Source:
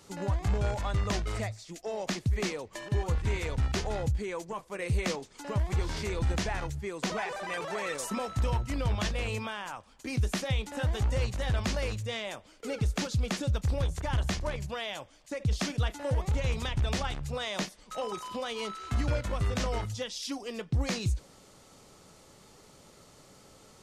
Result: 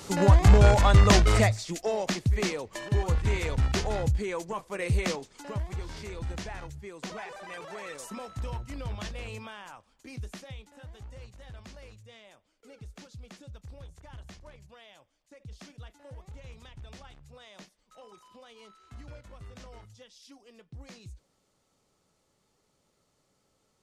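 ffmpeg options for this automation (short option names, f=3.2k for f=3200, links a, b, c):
-af "volume=12dB,afade=t=out:st=1.47:d=0.62:silence=0.354813,afade=t=out:st=4.88:d=0.88:silence=0.334965,afade=t=out:st=9.68:d=1.08:silence=0.298538"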